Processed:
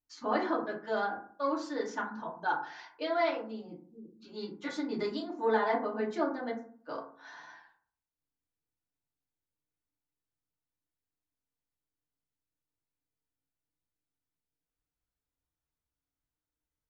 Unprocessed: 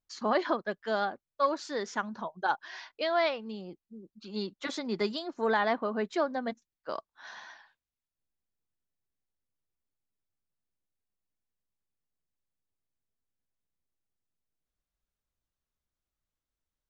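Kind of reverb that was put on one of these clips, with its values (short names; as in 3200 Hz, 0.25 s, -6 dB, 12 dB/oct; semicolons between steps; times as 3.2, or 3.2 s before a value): FDN reverb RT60 0.5 s, low-frequency decay 1.3×, high-frequency decay 0.35×, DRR -5 dB; gain -9 dB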